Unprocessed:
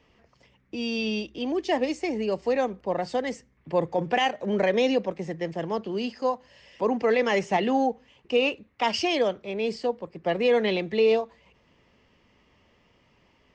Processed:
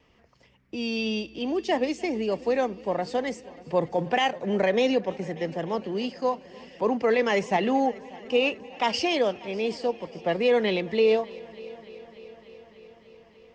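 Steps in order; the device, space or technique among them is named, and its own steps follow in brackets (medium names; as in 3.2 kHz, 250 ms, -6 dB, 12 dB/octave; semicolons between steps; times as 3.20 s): multi-head tape echo (multi-head delay 296 ms, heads first and second, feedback 68%, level -24 dB; wow and flutter 20 cents)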